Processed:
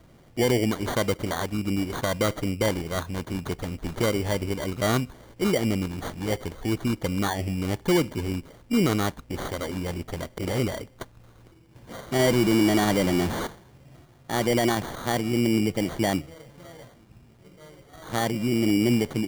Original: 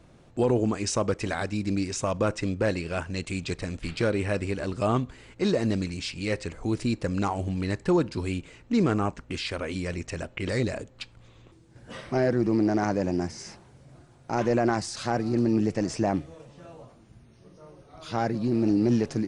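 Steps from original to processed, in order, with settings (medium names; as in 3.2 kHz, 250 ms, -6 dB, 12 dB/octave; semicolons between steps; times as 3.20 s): 12.19–13.47 s: jump at every zero crossing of -26.5 dBFS; sample-and-hold 17×; trim +1 dB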